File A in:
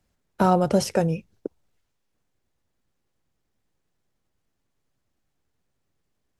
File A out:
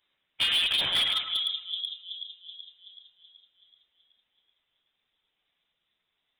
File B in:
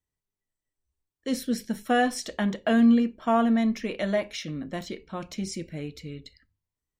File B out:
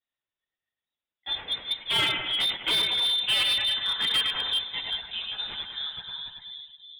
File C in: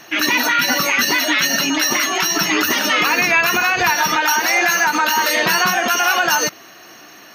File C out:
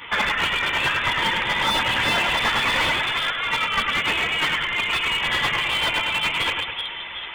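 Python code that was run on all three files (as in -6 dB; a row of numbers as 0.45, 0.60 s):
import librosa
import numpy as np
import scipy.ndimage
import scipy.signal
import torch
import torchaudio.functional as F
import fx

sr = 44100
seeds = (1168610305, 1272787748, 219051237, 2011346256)

y = fx.tracing_dist(x, sr, depth_ms=0.28)
y = scipy.signal.sosfilt(scipy.signal.butter(4, 100.0, 'highpass', fs=sr, output='sos'), y)
y = fx.low_shelf(y, sr, hz=260.0, db=-9.5)
y = fx.over_compress(y, sr, threshold_db=-22.0, ratio=-0.5)
y = fx.chorus_voices(y, sr, voices=6, hz=0.76, base_ms=12, depth_ms=2.5, mix_pct=60)
y = fx.echo_split(y, sr, split_hz=680.0, low_ms=378, high_ms=104, feedback_pct=52, wet_db=-4)
y = fx.freq_invert(y, sr, carrier_hz=3800)
y = fx.slew_limit(y, sr, full_power_hz=160.0)
y = F.gain(torch.from_numpy(y), 4.5).numpy()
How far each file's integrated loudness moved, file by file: -3.5, +1.0, -5.5 LU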